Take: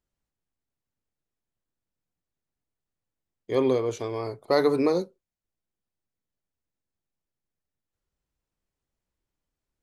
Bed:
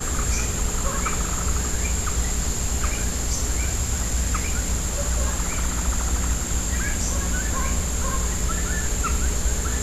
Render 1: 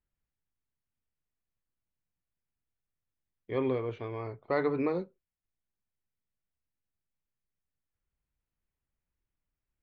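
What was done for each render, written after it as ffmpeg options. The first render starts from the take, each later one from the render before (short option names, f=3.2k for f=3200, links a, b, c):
-af "lowpass=f=2.6k:w=0.5412,lowpass=f=2.6k:w=1.3066,equalizer=f=510:w=0.39:g=-8"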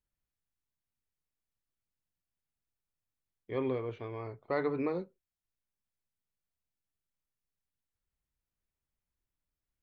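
-af "volume=-3dB"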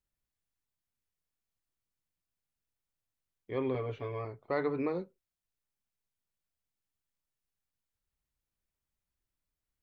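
-filter_complex "[0:a]asettb=1/sr,asplit=3[a][b][c];[a]atrim=end=3.744[d];[b]atrim=start=3.74:end=4.25,asetpts=PTS-STARTPTS,afade=t=in:d=0.004:c=qsin,afade=t=out:st=0.506:d=0.004:c=qsin,aecho=1:1:7.1:0.85,atrim=end_sample=22491[e];[c]atrim=start=4.246[f];[d][e]acrossfade=d=0.004:c1=hsin:c2=qsin[g];[g][f]acrossfade=d=0.004:c1=qsin:c2=hsin"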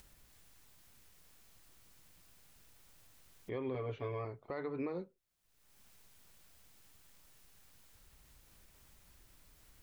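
-af "acompressor=mode=upward:threshold=-41dB:ratio=2.5,alimiter=level_in=6.5dB:limit=-24dB:level=0:latency=1:release=331,volume=-6.5dB"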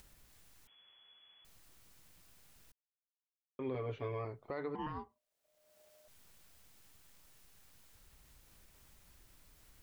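-filter_complex "[0:a]asettb=1/sr,asplit=3[a][b][c];[a]atrim=end=0.674[d];[b]atrim=start=0.67:end=1.45,asetpts=PTS-STARTPTS,afade=t=in:d=0.004:c=qsin,afade=t=out:st=0.776:d=0.004:c=qsin,lowpass=f=2.9k:t=q:w=0.5098,lowpass=f=2.9k:t=q:w=0.6013,lowpass=f=2.9k:t=q:w=0.9,lowpass=f=2.9k:t=q:w=2.563,afreqshift=-3400[e];[c]atrim=start=1.446[f];[d][e]acrossfade=d=0.004:c1=hsin:c2=qsin[g];[g][f]acrossfade=d=0.004:c1=qsin:c2=hsin,asettb=1/sr,asplit=3[h][i][j];[h]atrim=end=4.754[k];[i]atrim=start=4.75:end=6.08,asetpts=PTS-STARTPTS,afade=t=in:d=0.004:c=qsin,afade=t=out:st=1.326:d=0.004:c=qsin,aeval=exprs='val(0)*sin(2*PI*610*n/s)':c=same[l];[j]atrim=start=6.076[m];[k][l]acrossfade=d=0.004:c1=hsin:c2=qsin[n];[n][m]acrossfade=d=0.004:c1=qsin:c2=hsin,asplit=3[o][p][q];[o]atrim=end=2.72,asetpts=PTS-STARTPTS,afade=t=out:st=2.716:d=0.004:c=hsin[r];[p]atrim=start=2.72:end=3.59,asetpts=PTS-STARTPTS,volume=0[s];[q]atrim=start=3.59,asetpts=PTS-STARTPTS,afade=t=in:d=0.004:c=hsin[t];[r][s][t]concat=n=3:v=0:a=1"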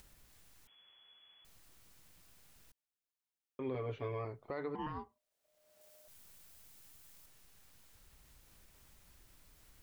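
-filter_complex "[0:a]asettb=1/sr,asplit=3[a][b][c];[a]atrim=end=5.814[d];[b]atrim=start=5.81:end=7.26,asetpts=PTS-STARTPTS,afade=t=in:d=0.004:c=qsin,afade=t=out:st=1.446:d=0.004:c=qsin,highshelf=f=6.6k:g=7[e];[c]atrim=start=7.256[f];[d][e]acrossfade=d=0.004:c1=hsin:c2=qsin[g];[g][f]acrossfade=d=0.004:c1=qsin:c2=hsin"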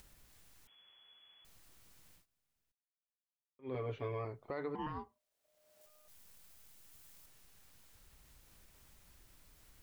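-filter_complex "[0:a]asettb=1/sr,asplit=3[a][b][c];[a]atrim=end=5.864[d];[b]atrim=start=5.86:end=6.92,asetpts=PTS-STARTPTS,afade=t=in:d=0.004:c=qsin,afade=t=out:st=1.056:d=0.004:c=qsin,aeval=exprs='max(val(0),0)':c=same[e];[c]atrim=start=6.916[f];[d][e]acrossfade=d=0.004:c1=hsin:c2=qsin[g];[g][f]acrossfade=d=0.004:c1=qsin:c2=hsin,asplit=3[h][i][j];[h]atrim=end=2.26,asetpts=PTS-STARTPTS,afade=t=out:st=2.14:d=0.12:silence=0.0749894[k];[i]atrim=start=2.26:end=3.62,asetpts=PTS-STARTPTS,volume=-22.5dB[l];[j]atrim=start=3.62,asetpts=PTS-STARTPTS,afade=t=in:d=0.12:silence=0.0749894[m];[k][l][m]concat=n=3:v=0:a=1"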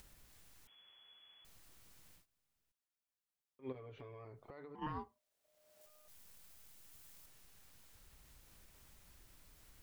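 -filter_complex "[0:a]asplit=3[a][b][c];[a]afade=t=out:st=3.71:d=0.02[d];[b]acompressor=threshold=-49dB:ratio=10:attack=3.2:release=140:knee=1:detection=peak,afade=t=in:st=3.71:d=0.02,afade=t=out:st=4.81:d=0.02[e];[c]afade=t=in:st=4.81:d=0.02[f];[d][e][f]amix=inputs=3:normalize=0"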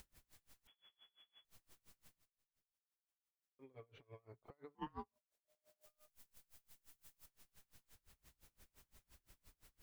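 -af "aeval=exprs='val(0)*pow(10,-30*(0.5-0.5*cos(2*PI*5.8*n/s))/20)':c=same"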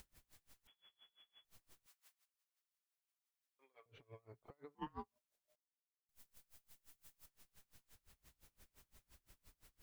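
-filter_complex "[0:a]asettb=1/sr,asplit=3[a][b][c];[a]atrim=end=1.864[d];[b]atrim=start=1.86:end=3.86,asetpts=PTS-STARTPTS,afade=t=in:d=0.004:c=qsin,afade=t=out:st=1.996:d=0.004:c=qsin,highpass=890[e];[c]atrim=start=3.856[f];[d][e]acrossfade=d=0.004:c1=hsin:c2=qsin[g];[g][f]acrossfade=d=0.004:c1=qsin:c2=hsin,asplit=3[h][i][j];[h]atrim=end=5.56,asetpts=PTS-STARTPTS,afade=t=out:st=5.556:d=0.004:c=hsin[k];[i]atrim=start=5.56:end=6.09,asetpts=PTS-STARTPTS,volume=0[l];[j]atrim=start=6.09,asetpts=PTS-STARTPTS,afade=t=in:d=0.004:c=hsin[m];[k][l][m]concat=n=3:v=0:a=1"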